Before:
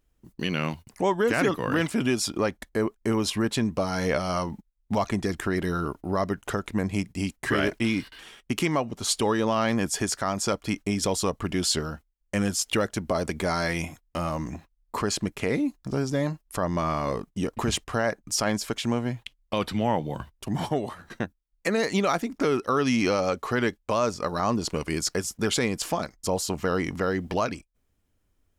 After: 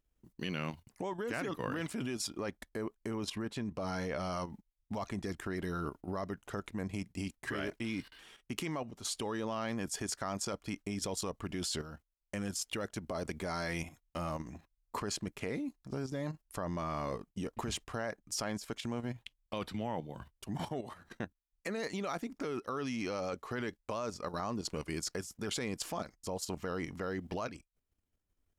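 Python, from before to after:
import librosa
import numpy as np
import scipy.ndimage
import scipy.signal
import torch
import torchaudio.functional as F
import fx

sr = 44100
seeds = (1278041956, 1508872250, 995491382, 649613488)

y = fx.high_shelf(x, sr, hz=5400.0, db=-6.0, at=(3.11, 4.32))
y = fx.level_steps(y, sr, step_db=10)
y = F.gain(torch.from_numpy(y), -6.5).numpy()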